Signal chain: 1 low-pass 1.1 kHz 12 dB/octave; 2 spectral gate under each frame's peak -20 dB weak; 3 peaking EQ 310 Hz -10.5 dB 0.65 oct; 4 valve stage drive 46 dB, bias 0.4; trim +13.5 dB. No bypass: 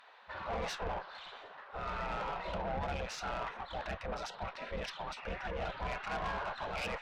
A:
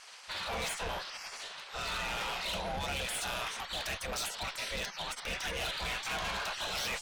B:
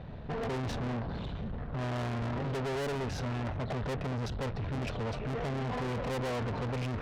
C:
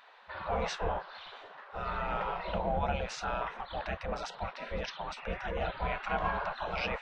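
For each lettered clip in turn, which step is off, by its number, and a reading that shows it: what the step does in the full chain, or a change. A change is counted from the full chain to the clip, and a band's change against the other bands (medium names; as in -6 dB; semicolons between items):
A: 1, 8 kHz band +15.0 dB; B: 2, 125 Hz band +12.5 dB; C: 4, crest factor change +8.0 dB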